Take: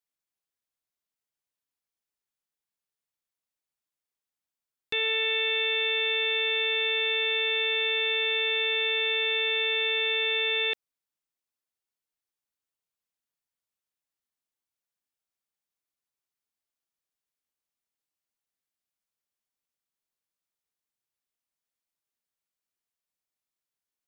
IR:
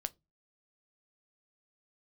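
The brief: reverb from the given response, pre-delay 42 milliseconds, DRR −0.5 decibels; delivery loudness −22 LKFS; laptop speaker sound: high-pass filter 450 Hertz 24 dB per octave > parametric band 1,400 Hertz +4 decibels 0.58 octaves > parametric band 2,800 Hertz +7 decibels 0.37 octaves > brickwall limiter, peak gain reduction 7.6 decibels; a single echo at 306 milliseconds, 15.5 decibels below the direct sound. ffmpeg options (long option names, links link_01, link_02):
-filter_complex "[0:a]aecho=1:1:306:0.168,asplit=2[link_01][link_02];[1:a]atrim=start_sample=2205,adelay=42[link_03];[link_02][link_03]afir=irnorm=-1:irlink=0,volume=1.5dB[link_04];[link_01][link_04]amix=inputs=2:normalize=0,highpass=frequency=450:width=0.5412,highpass=frequency=450:width=1.3066,equalizer=frequency=1400:width_type=o:width=0.58:gain=4,equalizer=frequency=2800:width_type=o:width=0.37:gain=7,alimiter=limit=-18.5dB:level=0:latency=1"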